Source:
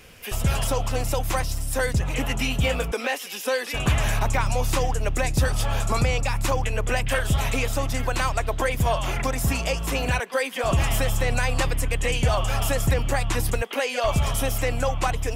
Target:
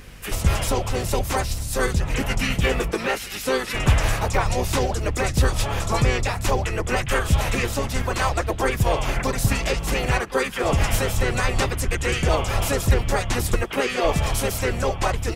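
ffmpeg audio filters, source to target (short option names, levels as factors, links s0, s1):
-filter_complex "[0:a]aeval=exprs='val(0)+0.00631*(sin(2*PI*50*n/s)+sin(2*PI*2*50*n/s)/2+sin(2*PI*3*50*n/s)/3+sin(2*PI*4*50*n/s)/4+sin(2*PI*5*50*n/s)/5)':c=same,asplit=4[s0][s1][s2][s3];[s1]asetrate=22050,aresample=44100,atempo=2,volume=0.355[s4];[s2]asetrate=33038,aresample=44100,atempo=1.33484,volume=0.708[s5];[s3]asetrate=37084,aresample=44100,atempo=1.18921,volume=0.316[s6];[s0][s4][s5][s6]amix=inputs=4:normalize=0"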